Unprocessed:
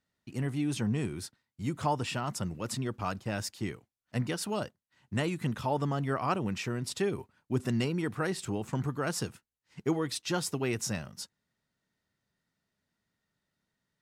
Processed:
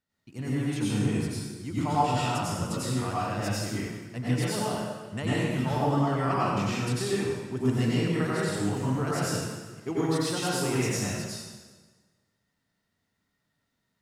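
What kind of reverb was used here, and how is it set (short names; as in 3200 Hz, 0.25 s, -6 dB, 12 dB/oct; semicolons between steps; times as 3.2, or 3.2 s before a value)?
plate-style reverb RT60 1.4 s, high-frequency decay 0.85×, pre-delay 80 ms, DRR -8.5 dB; gain -4.5 dB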